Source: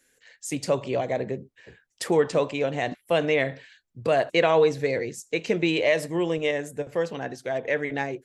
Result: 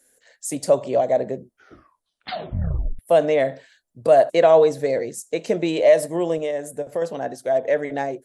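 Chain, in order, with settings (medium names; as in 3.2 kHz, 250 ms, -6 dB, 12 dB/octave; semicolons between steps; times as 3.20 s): 1.34 s: tape stop 1.65 s; 6.42–7.02 s: compression 2.5:1, threshold -28 dBFS, peak gain reduction 6 dB; fifteen-band graphic EQ 100 Hz -4 dB, 250 Hz +3 dB, 630 Hz +11 dB, 2.5 kHz -6 dB, 10 kHz +12 dB; trim -1 dB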